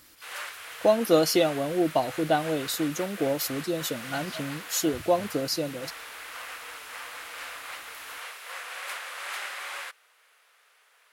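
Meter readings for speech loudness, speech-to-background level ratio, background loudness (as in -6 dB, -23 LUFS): -27.0 LUFS, 11.5 dB, -38.5 LUFS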